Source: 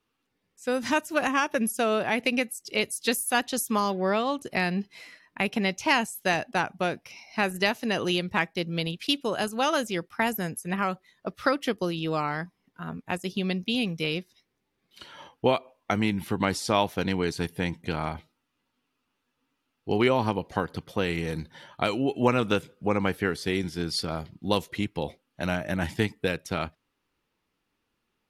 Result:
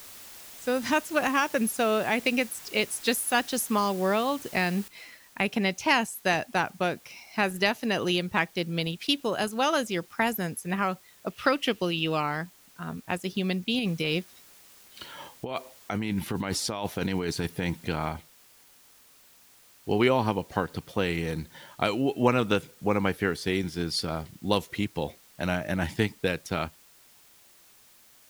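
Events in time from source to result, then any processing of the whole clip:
4.88 noise floor step -46 dB -57 dB
11.3–12.23 bell 2800 Hz +9.5 dB 0.48 oct
13.79–17.88 negative-ratio compressor -29 dBFS

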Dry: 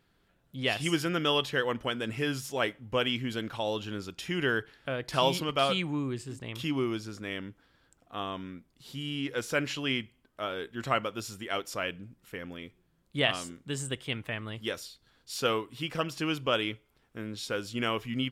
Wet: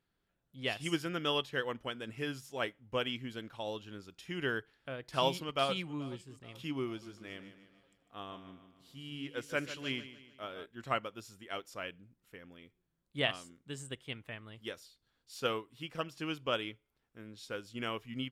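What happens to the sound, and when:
5.25–5.78 echo throw 0.43 s, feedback 60%, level -17.5 dB
6.87–10.66 feedback echo 0.15 s, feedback 49%, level -9.5 dB
whole clip: upward expander 1.5:1, over -40 dBFS; gain -4 dB

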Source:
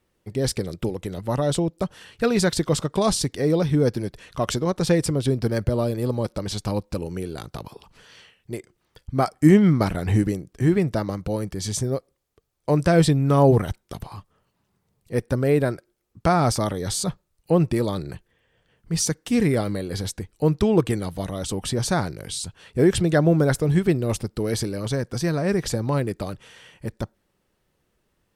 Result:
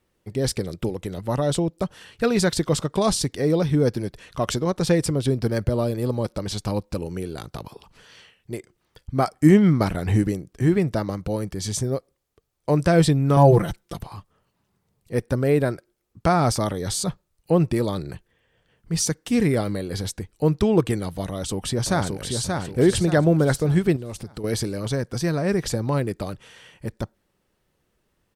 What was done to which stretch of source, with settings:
13.36–13.97 comb 5.9 ms, depth 82%
21.27–22.41 echo throw 0.58 s, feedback 40%, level -4 dB
23.96–24.44 compressor, threshold -29 dBFS

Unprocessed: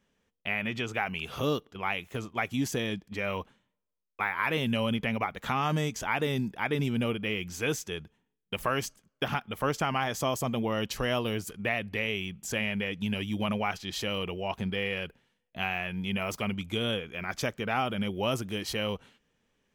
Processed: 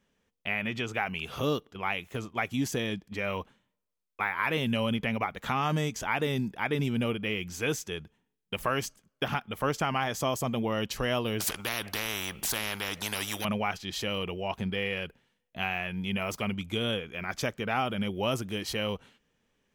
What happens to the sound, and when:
11.4–13.45 spectral compressor 4:1

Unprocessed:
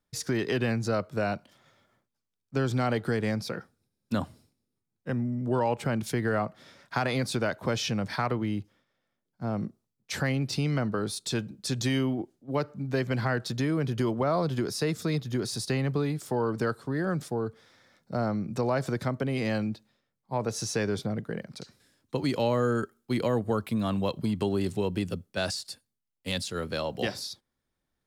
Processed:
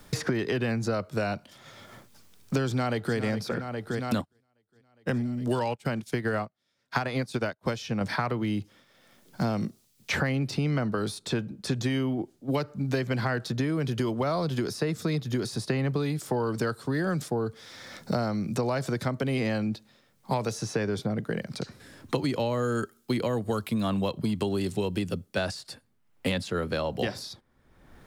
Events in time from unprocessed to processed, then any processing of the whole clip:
2.67–3.17 echo throw 0.41 s, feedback 70%, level -12 dB
4.21–8.01 upward expander 2.5:1, over -49 dBFS
whole clip: three-band squash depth 100%

